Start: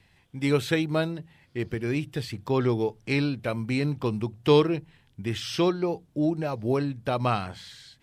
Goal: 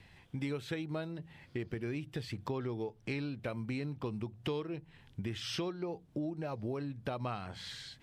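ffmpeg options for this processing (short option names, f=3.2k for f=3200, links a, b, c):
-af "highshelf=f=6.3k:g=-7,acompressor=threshold=-39dB:ratio=6,volume=3dB"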